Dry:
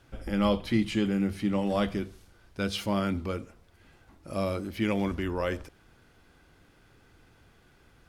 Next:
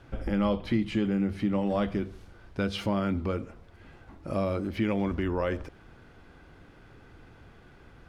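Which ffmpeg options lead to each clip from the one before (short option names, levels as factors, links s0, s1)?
-af "lowpass=f=2000:p=1,acompressor=threshold=0.0141:ratio=2,volume=2.37"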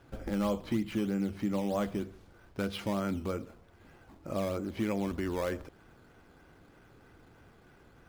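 -filter_complex "[0:a]lowshelf=f=100:g=-7.5,asplit=2[s0][s1];[s1]acrusher=samples=11:mix=1:aa=0.000001:lfo=1:lforange=11:lforate=3.2,volume=0.668[s2];[s0][s2]amix=inputs=2:normalize=0,volume=0.422"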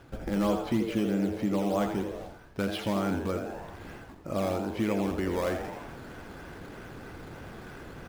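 -filter_complex "[0:a]asplit=6[s0][s1][s2][s3][s4][s5];[s1]adelay=83,afreqshift=120,volume=0.422[s6];[s2]adelay=166,afreqshift=240,volume=0.178[s7];[s3]adelay=249,afreqshift=360,volume=0.0741[s8];[s4]adelay=332,afreqshift=480,volume=0.0313[s9];[s5]adelay=415,afreqshift=600,volume=0.0132[s10];[s0][s6][s7][s8][s9][s10]amix=inputs=6:normalize=0,areverse,acompressor=mode=upward:threshold=0.0178:ratio=2.5,areverse,volume=1.41"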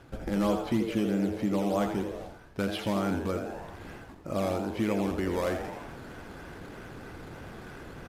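-af "aresample=32000,aresample=44100"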